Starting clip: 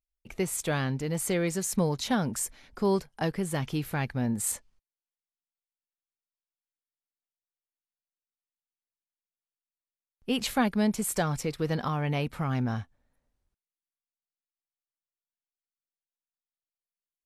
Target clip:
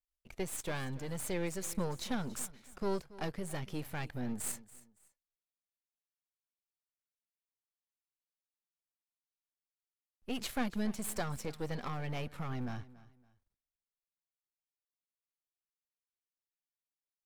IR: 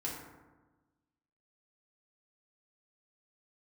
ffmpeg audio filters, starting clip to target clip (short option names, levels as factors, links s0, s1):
-af "aeval=exprs='if(lt(val(0),0),0.251*val(0),val(0))':c=same,aecho=1:1:281|562:0.112|0.0325,volume=0.562"